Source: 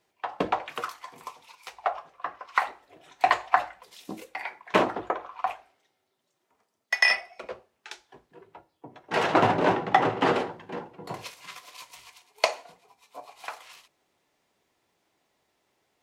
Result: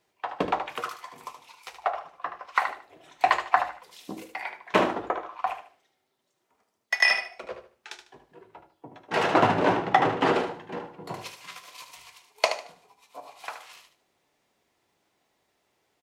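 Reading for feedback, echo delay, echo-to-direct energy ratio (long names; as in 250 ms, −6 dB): 27%, 75 ms, −8.5 dB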